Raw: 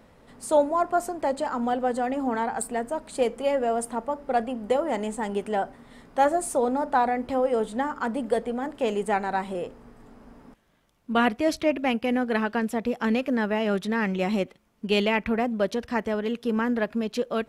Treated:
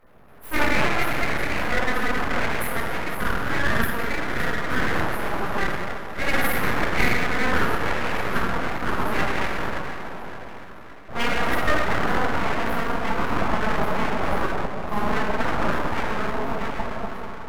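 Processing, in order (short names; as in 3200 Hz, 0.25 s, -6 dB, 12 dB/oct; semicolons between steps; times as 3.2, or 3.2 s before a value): ending faded out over 1.53 s; elliptic band-stop 1300–8100 Hz; formant shift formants +5 st; split-band echo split 320 Hz, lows 88 ms, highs 0.565 s, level -13 dB; reverb RT60 2.5 s, pre-delay 7 ms, DRR -10.5 dB; full-wave rectifier; gain -5 dB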